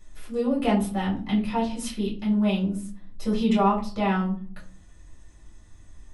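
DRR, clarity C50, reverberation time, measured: −4.5 dB, 9.5 dB, 0.45 s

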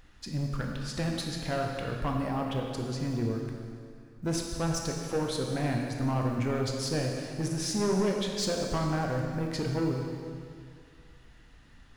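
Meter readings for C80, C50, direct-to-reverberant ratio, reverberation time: 3.0 dB, 2.0 dB, 0.5 dB, 2.3 s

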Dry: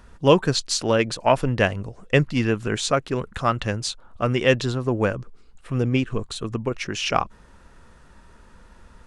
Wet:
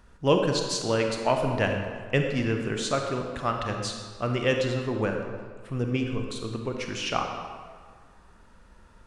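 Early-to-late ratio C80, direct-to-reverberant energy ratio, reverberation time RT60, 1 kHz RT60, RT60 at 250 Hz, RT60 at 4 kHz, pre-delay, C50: 5.5 dB, 3.0 dB, 1.8 s, 1.8 s, 1.7 s, 1.2 s, 31 ms, 4.0 dB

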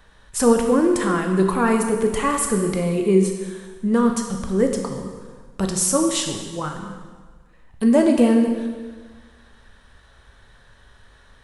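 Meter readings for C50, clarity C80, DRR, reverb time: 5.5 dB, 6.5 dB, 3.0 dB, 1.5 s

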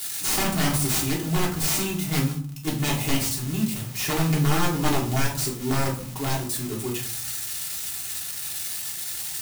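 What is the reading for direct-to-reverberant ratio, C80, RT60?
−4.5 dB, 13.0 dB, 0.50 s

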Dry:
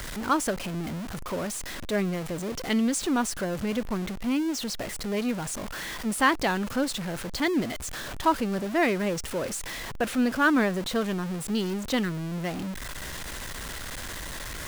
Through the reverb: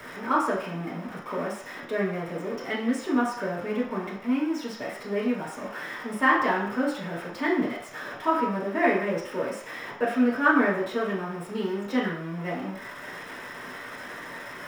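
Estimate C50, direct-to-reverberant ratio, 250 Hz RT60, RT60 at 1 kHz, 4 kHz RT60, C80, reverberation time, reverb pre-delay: 4.0 dB, −7.5 dB, 0.45 s, 0.60 s, 0.65 s, 7.5 dB, 0.60 s, 3 ms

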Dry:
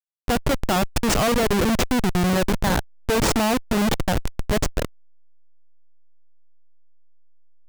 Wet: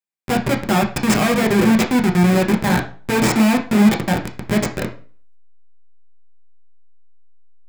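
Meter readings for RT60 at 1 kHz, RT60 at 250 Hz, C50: 0.40 s, 0.45 s, 11.0 dB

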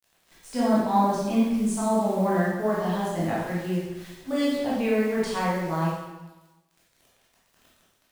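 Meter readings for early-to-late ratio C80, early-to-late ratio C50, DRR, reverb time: 2.0 dB, −1.0 dB, −8.5 dB, 1.1 s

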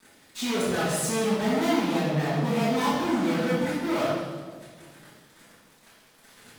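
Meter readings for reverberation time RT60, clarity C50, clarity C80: 1.5 s, −1.5 dB, 1.0 dB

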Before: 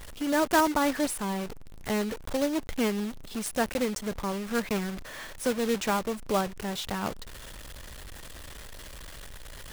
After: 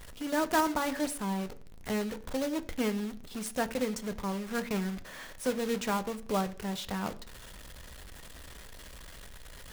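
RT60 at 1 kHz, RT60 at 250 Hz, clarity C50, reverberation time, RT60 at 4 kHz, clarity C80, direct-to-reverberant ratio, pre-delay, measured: 0.50 s, 0.55 s, 18.5 dB, 0.50 s, 0.50 s, 21.0 dB, 9.5 dB, 3 ms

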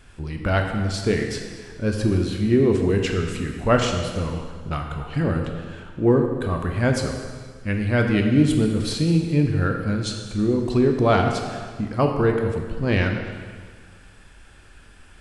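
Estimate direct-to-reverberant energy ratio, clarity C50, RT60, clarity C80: 2.5 dB, 4.5 dB, 1.7 s, 6.0 dB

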